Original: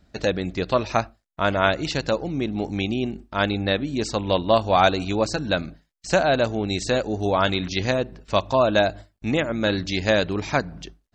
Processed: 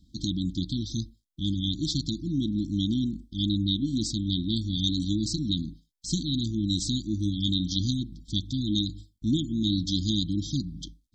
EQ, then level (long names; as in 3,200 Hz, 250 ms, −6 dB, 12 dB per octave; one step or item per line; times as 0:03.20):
linear-phase brick-wall band-stop 340–3,100 Hz
0.0 dB